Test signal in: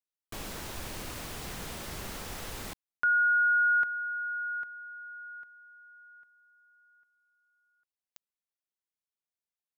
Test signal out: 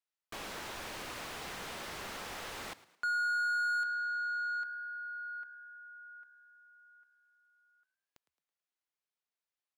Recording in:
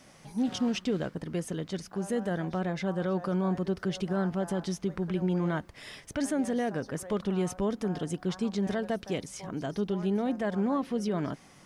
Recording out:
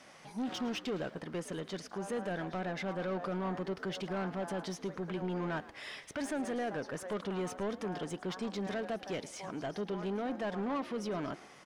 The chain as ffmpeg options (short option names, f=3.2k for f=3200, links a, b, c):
-filter_complex "[0:a]asplit=2[a][b];[b]highpass=f=720:p=1,volume=18dB,asoftclip=type=tanh:threshold=-19.5dB[c];[a][c]amix=inputs=2:normalize=0,lowpass=f=3k:p=1,volume=-6dB,asplit=5[d][e][f][g][h];[e]adelay=109,afreqshift=70,volume=-18dB[i];[f]adelay=218,afreqshift=140,volume=-25.3dB[j];[g]adelay=327,afreqshift=210,volume=-32.7dB[k];[h]adelay=436,afreqshift=280,volume=-40dB[l];[d][i][j][k][l]amix=inputs=5:normalize=0,volume=-8.5dB"